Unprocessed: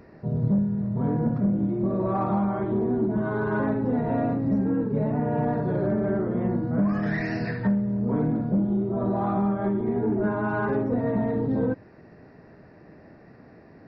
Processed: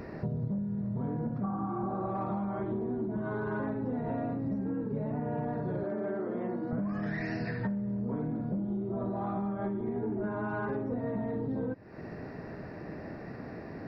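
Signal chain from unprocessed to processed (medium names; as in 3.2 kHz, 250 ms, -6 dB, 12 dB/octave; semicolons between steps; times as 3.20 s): 1.46–2.10 s: spectral replace 650–1700 Hz after; 5.83–6.73 s: high-pass 280 Hz 12 dB/octave; compression 8:1, threshold -39 dBFS, peak gain reduction 20 dB; trim +7.5 dB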